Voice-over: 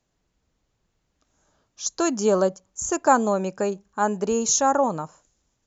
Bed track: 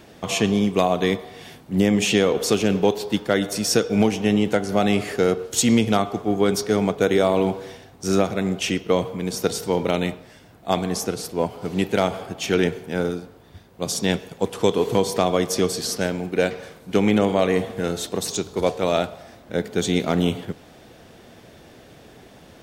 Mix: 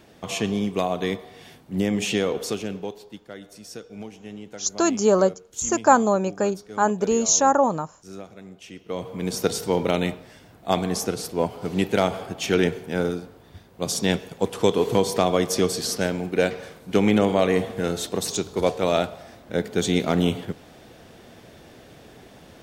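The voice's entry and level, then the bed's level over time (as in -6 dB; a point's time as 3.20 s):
2.80 s, +2.0 dB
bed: 2.34 s -5 dB
3.21 s -19.5 dB
8.68 s -19.5 dB
9.24 s -0.5 dB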